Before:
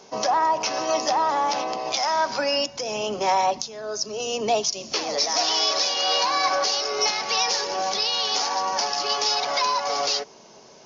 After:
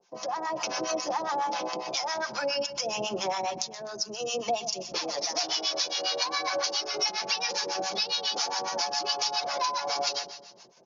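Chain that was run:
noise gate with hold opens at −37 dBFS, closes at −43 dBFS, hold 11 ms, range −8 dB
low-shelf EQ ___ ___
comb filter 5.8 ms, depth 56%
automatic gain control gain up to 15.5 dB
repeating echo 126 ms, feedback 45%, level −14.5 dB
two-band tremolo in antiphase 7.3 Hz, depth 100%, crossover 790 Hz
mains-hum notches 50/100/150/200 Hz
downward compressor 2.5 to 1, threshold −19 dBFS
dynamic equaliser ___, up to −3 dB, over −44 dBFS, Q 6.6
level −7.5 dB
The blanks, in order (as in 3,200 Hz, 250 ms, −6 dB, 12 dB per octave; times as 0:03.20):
97 Hz, −6 dB, 1,900 Hz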